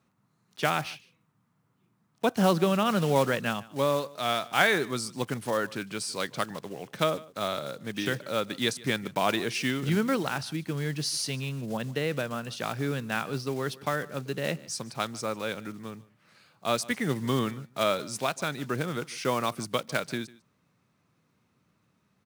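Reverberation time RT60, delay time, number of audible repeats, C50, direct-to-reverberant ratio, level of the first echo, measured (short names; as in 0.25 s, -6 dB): none, 0.149 s, 1, none, none, -21.5 dB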